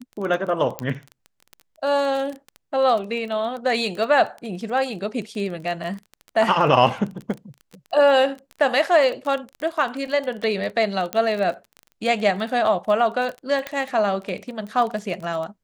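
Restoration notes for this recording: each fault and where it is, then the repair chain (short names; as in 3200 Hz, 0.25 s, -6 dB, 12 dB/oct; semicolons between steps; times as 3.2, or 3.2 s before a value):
crackle 21/s -28 dBFS
0.79 pop -11 dBFS
11.13 pop -9 dBFS
13.67 pop -13 dBFS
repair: de-click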